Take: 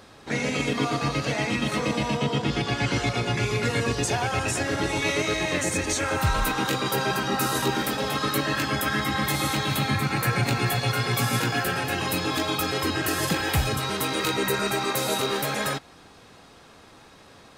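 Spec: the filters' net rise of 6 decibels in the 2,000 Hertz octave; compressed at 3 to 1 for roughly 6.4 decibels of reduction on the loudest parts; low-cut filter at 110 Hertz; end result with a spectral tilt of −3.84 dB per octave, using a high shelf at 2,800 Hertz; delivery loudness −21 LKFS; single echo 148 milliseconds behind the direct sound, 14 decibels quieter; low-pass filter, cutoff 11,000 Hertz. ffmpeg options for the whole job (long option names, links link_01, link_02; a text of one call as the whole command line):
ffmpeg -i in.wav -af "highpass=110,lowpass=11000,equalizer=frequency=2000:width_type=o:gain=5.5,highshelf=frequency=2800:gain=5,acompressor=threshold=-27dB:ratio=3,aecho=1:1:148:0.2,volume=6.5dB" out.wav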